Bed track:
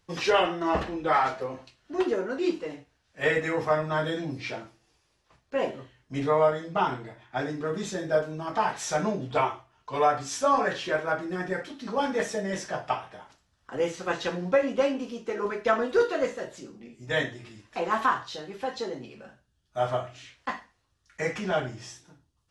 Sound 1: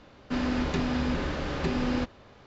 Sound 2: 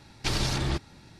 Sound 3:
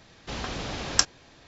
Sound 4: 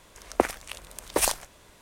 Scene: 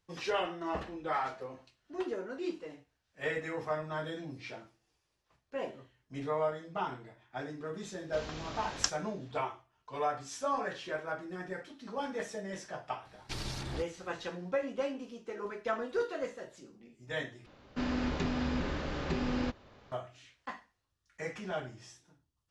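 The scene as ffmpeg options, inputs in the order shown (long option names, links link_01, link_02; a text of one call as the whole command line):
ffmpeg -i bed.wav -i cue0.wav -i cue1.wav -i cue2.wav -filter_complex "[0:a]volume=-10dB[link_01];[2:a]acompressor=mode=upward:threshold=-44dB:ratio=2.5:attack=3.2:release=140:knee=2.83:detection=peak[link_02];[link_01]asplit=2[link_03][link_04];[link_03]atrim=end=17.464[link_05];[1:a]atrim=end=2.46,asetpts=PTS-STARTPTS,volume=-5dB[link_06];[link_04]atrim=start=19.916[link_07];[3:a]atrim=end=1.47,asetpts=PTS-STARTPTS,volume=-10dB,afade=type=in:duration=0.004:curve=hsin,afade=type=out:start_time=1.466:duration=0.004:curve=hsin,adelay=7850[link_08];[link_02]atrim=end=1.19,asetpts=PTS-STARTPTS,volume=-11.5dB,afade=type=in:duration=0.004:curve=hsin,afade=type=out:start_time=1.186:duration=0.004:curve=hsin,adelay=13050[link_09];[link_05][link_06]acrossfade=duration=0.004:curve1=hsin:curve2=hsin[link_10];[link_10][link_07]acrossfade=duration=0.004:curve1=hsin:curve2=hsin[link_11];[link_11][link_08][link_09]amix=inputs=3:normalize=0" out.wav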